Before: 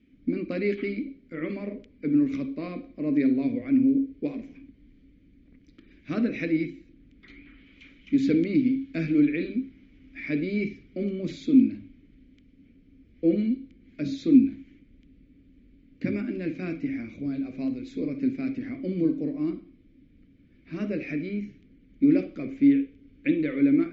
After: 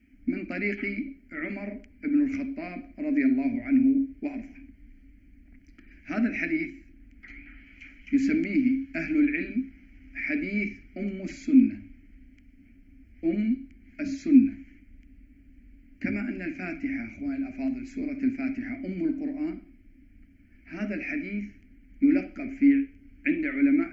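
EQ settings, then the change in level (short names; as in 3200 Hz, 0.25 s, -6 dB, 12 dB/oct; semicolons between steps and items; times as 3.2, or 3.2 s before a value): bell 360 Hz -12.5 dB 1 oct; fixed phaser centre 740 Hz, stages 8; +7.5 dB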